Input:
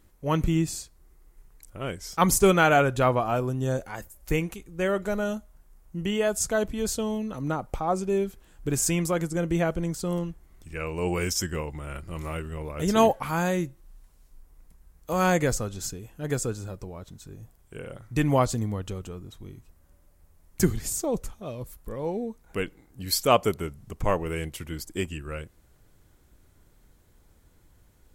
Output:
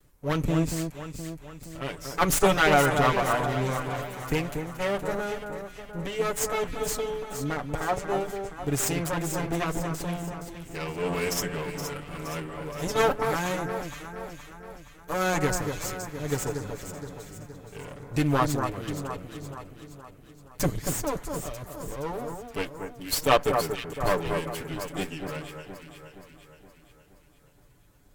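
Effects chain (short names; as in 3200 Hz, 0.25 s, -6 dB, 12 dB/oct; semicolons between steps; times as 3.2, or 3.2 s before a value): minimum comb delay 6.9 ms; echo with dull and thin repeats by turns 0.235 s, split 1800 Hz, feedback 71%, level -5.5 dB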